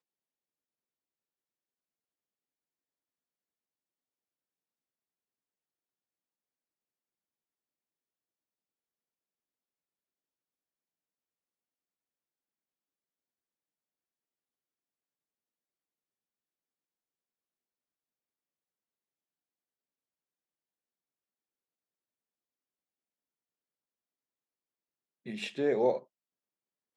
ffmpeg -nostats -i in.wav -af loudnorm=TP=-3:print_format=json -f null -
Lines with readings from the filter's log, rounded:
"input_i" : "-31.3",
"input_tp" : "-16.1",
"input_lra" : "0.0",
"input_thresh" : "-42.5",